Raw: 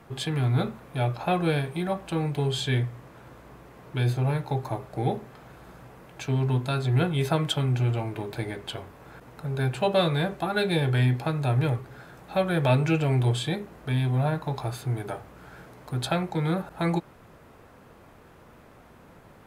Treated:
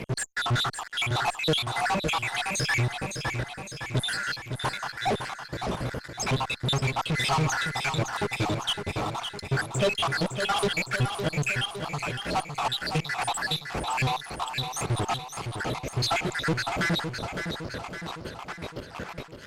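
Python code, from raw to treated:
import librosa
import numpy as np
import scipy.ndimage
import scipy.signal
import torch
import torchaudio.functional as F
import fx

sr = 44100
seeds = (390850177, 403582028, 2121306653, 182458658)

p1 = fx.spec_dropout(x, sr, seeds[0], share_pct=84)
p2 = fx.tilt_shelf(p1, sr, db=-3.5, hz=970.0)
p3 = fx.fuzz(p2, sr, gain_db=52.0, gate_db=-60.0)
p4 = p2 + (p3 * librosa.db_to_amplitude(-10.0))
p5 = scipy.signal.sosfilt(scipy.signal.butter(2, 7700.0, 'lowpass', fs=sr, output='sos'), p4)
p6 = fx.cheby_harmonics(p5, sr, harmonics=(4, 6), levels_db=(-15, -24), full_scale_db=-12.5)
p7 = p6 + fx.echo_feedback(p6, sr, ms=560, feedback_pct=58, wet_db=-7.5, dry=0)
y = p7 * librosa.db_to_amplitude(-3.0)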